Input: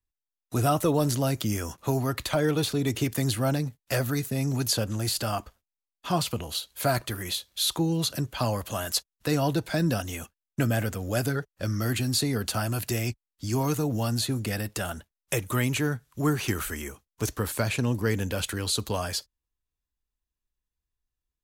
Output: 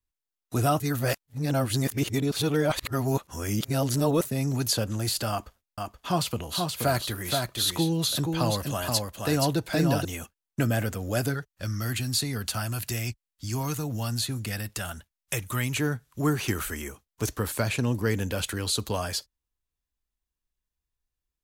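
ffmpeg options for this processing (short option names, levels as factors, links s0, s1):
-filter_complex "[0:a]asettb=1/sr,asplit=3[s0][s1][s2];[s0]atrim=end=5.304[s3];[s1]atrim=start=5.3:end=10.05,asetpts=PTS-STARTPTS,afade=t=in:d=0.004:c=qsin,afade=t=out:st=4.746:d=0.004:c=qsin,aecho=1:1:476:0.631,atrim=end_sample=209475[s4];[s2]atrim=start=10.046[s5];[s3][s4]acrossfade=d=0.004:c1=hsin:c2=qsin[s6];[s6][s5]acrossfade=d=0.004:c1=qsin:c2=hsin,asettb=1/sr,asplit=3[s7][s8][s9];[s7]atrim=end=11.344[s10];[s8]atrim=start=11.34:end=15.77,asetpts=PTS-STARTPTS,afade=t=in:d=0.004:c=qsin,afade=t=out:st=4.426:d=0.004:c=qsin,equalizer=f=410:w=0.6:g=-7.5[s11];[s9]atrim=start=15.766[s12];[s10][s11]acrossfade=d=0.004:c1=hsin:c2=qsin[s13];[s13][s12]acrossfade=d=0.004:c1=qsin:c2=hsin,asplit=3[s14][s15][s16];[s14]atrim=end=0.802[s17];[s15]atrim=start=0.798:end=4.252,asetpts=PTS-STARTPTS,areverse[s18];[s16]atrim=start=4.248[s19];[s17][s18]acrossfade=d=0.004:c1=hsin:c2=hsin[s20];[s20][s19]acrossfade=d=0.004:c1=hsin:c2=hsin"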